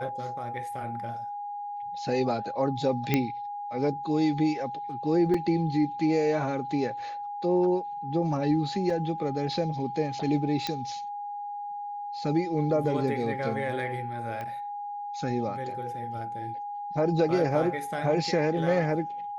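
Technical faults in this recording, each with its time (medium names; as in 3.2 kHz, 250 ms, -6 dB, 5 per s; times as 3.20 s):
whine 820 Hz -33 dBFS
3.14 s: pop -10 dBFS
5.34 s: dropout 3.7 ms
8.90 s: dropout 2.9 ms
10.67 s: pop -14 dBFS
14.41 s: pop -24 dBFS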